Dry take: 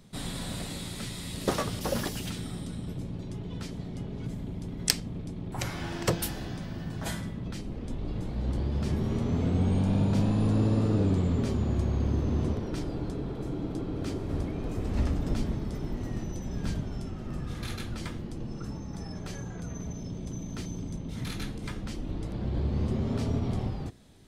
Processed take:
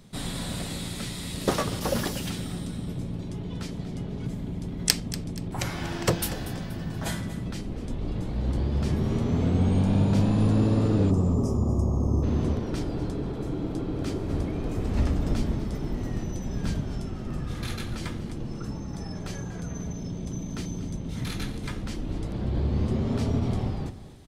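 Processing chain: spectral gain 11.11–12.23, 1300–4900 Hz -22 dB; on a send: feedback echo 0.239 s, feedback 37%, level -14.5 dB; on the sum: gain +3 dB

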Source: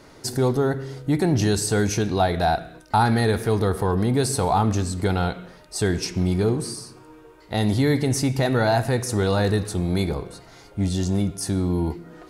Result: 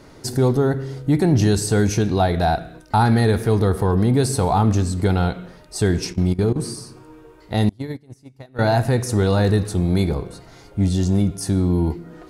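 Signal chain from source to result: low shelf 380 Hz +5.5 dB; 6.12–6.56 level quantiser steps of 17 dB; 7.69–8.59 gate -12 dBFS, range -33 dB

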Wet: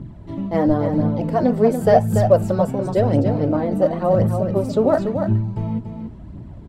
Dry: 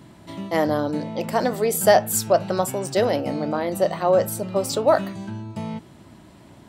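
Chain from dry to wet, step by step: tilt -4.5 dB/oct; phaser 0.94 Hz, delay 4.8 ms, feedback 52%; on a send: echo 0.287 s -7 dB; on the sum: gain -3.5 dB

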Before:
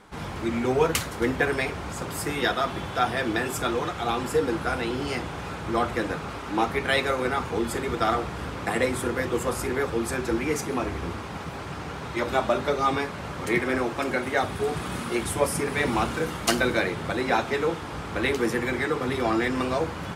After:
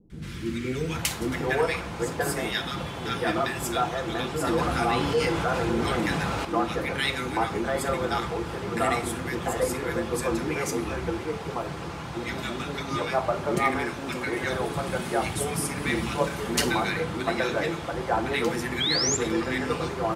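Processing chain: three bands offset in time lows, highs, mids 0.1/0.79 s, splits 370/1500 Hz; 18.8–19.17 painted sound rise 3100–7500 Hz -26 dBFS; reverb RT60 0.60 s, pre-delay 6 ms, DRR 10 dB; 4.47–6.45 fast leveller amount 50%

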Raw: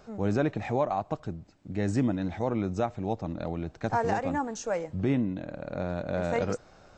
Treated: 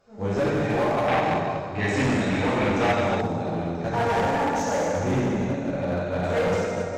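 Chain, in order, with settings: low shelf 400 Hz -2 dB; plate-style reverb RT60 3.1 s, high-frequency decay 0.85×, DRR -10 dB; one-sided clip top -19 dBFS, bottom -18 dBFS; 1.08–3.21 bell 2500 Hz +10.5 dB 1.8 oct; upward expander 1.5:1, over -41 dBFS

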